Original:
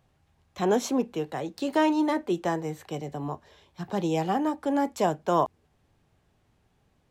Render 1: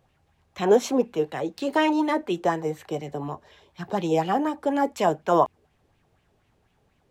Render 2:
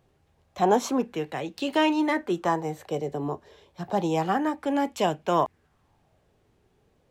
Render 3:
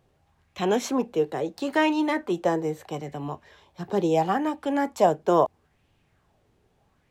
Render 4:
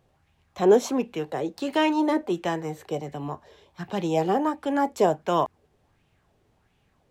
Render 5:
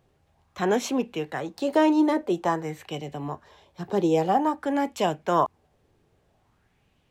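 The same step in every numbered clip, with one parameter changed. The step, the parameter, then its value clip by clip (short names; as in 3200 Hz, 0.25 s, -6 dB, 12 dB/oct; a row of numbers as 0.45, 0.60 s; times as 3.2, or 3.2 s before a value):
LFO bell, rate: 4.1, 0.3, 0.76, 1.4, 0.5 Hz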